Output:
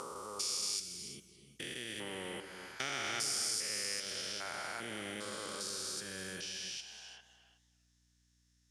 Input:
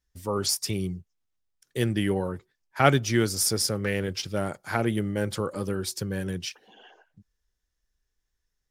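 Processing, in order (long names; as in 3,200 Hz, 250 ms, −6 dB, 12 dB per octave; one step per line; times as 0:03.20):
spectrum averaged block by block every 400 ms
meter weighting curve ITU-R 468
downward compressor 2 to 1, threshold −44 dBFS, peak gain reduction 13 dB
reverb whose tail is shaped and stops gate 390 ms rising, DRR 8.5 dB
mains hum 60 Hz, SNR 32 dB
feedback echo with a swinging delay time 284 ms, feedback 31%, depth 215 cents, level −20.5 dB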